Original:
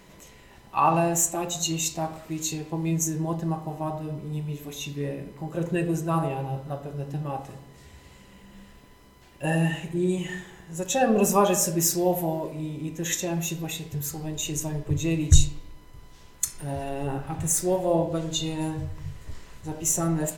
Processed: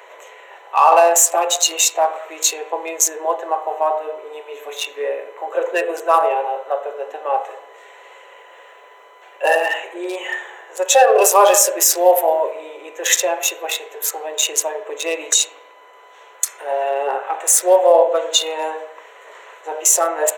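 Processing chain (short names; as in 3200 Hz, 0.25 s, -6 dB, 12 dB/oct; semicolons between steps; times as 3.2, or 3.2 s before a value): Wiener smoothing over 9 samples; steep high-pass 450 Hz 48 dB/oct; maximiser +16 dB; gain -1 dB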